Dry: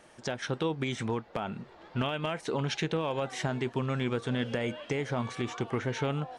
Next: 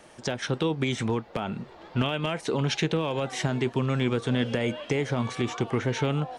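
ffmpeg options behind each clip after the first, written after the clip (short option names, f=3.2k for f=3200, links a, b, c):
-filter_complex "[0:a]equalizer=f=1.6k:t=o:w=0.77:g=-2.5,acrossover=split=480|1200[a][b][c];[b]alimiter=level_in=10.5dB:limit=-24dB:level=0:latency=1,volume=-10.5dB[d];[a][d][c]amix=inputs=3:normalize=0,volume=5.5dB"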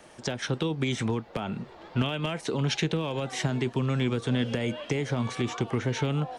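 -filter_complex "[0:a]acrossover=split=290|3000[a][b][c];[b]acompressor=threshold=-30dB:ratio=6[d];[a][d][c]amix=inputs=3:normalize=0"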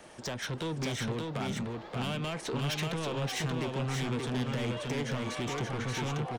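-af "asoftclip=type=tanh:threshold=-31dB,aecho=1:1:580:0.708"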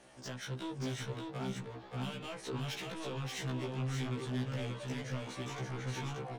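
-af "afftfilt=real='re*1.73*eq(mod(b,3),0)':imag='im*1.73*eq(mod(b,3),0)':win_size=2048:overlap=0.75,volume=-4.5dB"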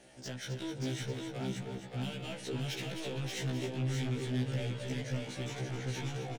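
-af "equalizer=f=1.1k:w=2.8:g=-12.5,aecho=1:1:159|252|262:0.1|0.141|0.355,volume=2dB"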